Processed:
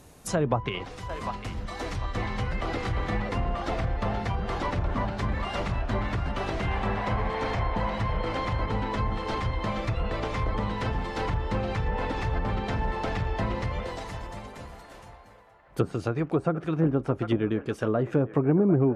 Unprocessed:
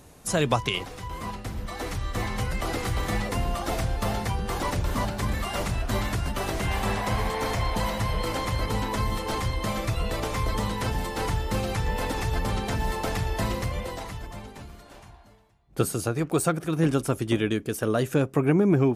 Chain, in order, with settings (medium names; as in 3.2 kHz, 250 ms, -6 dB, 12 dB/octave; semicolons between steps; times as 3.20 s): feedback echo behind a band-pass 749 ms, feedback 36%, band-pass 1 kHz, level -10 dB; low-pass that closes with the level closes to 1 kHz, closed at -19 dBFS; trim -1 dB